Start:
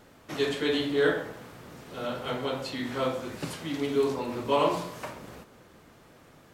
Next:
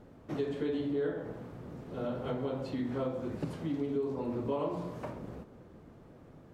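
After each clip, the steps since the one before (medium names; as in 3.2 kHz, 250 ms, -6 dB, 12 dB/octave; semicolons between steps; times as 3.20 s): tilt shelf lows +9 dB; compression 4:1, threshold -26 dBFS, peak gain reduction 10.5 dB; treble shelf 8.6 kHz -4.5 dB; trim -5 dB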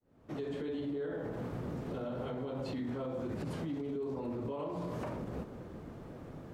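fade-in on the opening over 1.06 s; compression 2:1, threshold -38 dBFS, peak gain reduction 6 dB; peak limiter -38 dBFS, peak gain reduction 11 dB; trim +7 dB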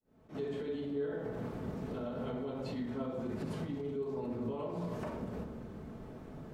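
reverberation RT60 0.75 s, pre-delay 5 ms, DRR 5 dB; attacks held to a fixed rise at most 250 dB/s; trim -2 dB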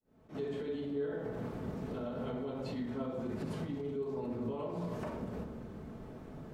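no audible change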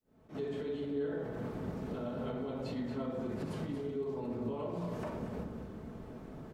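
delay 231 ms -9.5 dB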